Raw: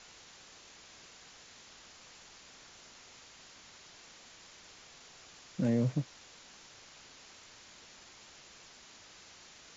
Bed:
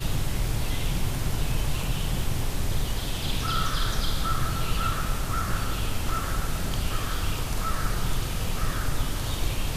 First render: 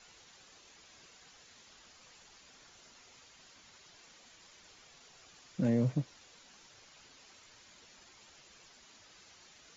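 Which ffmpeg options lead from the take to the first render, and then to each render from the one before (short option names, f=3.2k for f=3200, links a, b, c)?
-af "afftdn=nr=7:nf=-56"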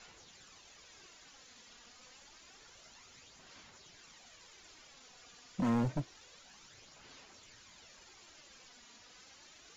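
-af "aeval=exprs='0.0473*(abs(mod(val(0)/0.0473+3,4)-2)-1)':c=same,aphaser=in_gain=1:out_gain=1:delay=4.2:decay=0.39:speed=0.28:type=sinusoidal"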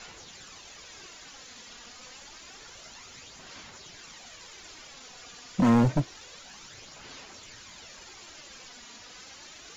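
-af "volume=10.5dB"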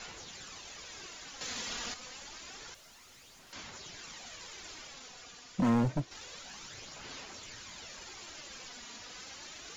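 -filter_complex "[0:a]asettb=1/sr,asplit=3[a][b][c];[a]atrim=end=2.744[d];[b]atrim=start=2.74:end=3.53,asetpts=PTS-STARTPTS,afade=t=in:d=0.004:c=qsin,afade=t=out:st=0.786:d=0.004:c=qsin,aeval=exprs='(tanh(562*val(0)+0.2)-tanh(0.2))/562':c=same[e];[c]atrim=start=3.526[f];[d][e]acrossfade=d=0.004:c1=hsin:c2=qsin[g];[g][f]acrossfade=d=0.004:c1=qsin:c2=hsin,asplit=4[h][i][j][k];[h]atrim=end=1.412[l];[i]atrim=start=1.408:end=1.942,asetpts=PTS-STARTPTS,volume=8.5dB[m];[j]atrim=start=1.938:end=6.11,asetpts=PTS-STARTPTS,afade=t=out:st=2.822:d=1.35:c=qua:silence=0.421697[n];[k]atrim=start=6.11,asetpts=PTS-STARTPTS,afade=t=in:d=0.004:c=hsin:silence=0.421697[o];[l][m]acrossfade=d=0.004:c1=hsin:c2=hsin[p];[n][o]concat=n=2:v=0:a=1[q];[p][q]acrossfade=d=0.004:c1=hsin:c2=hsin"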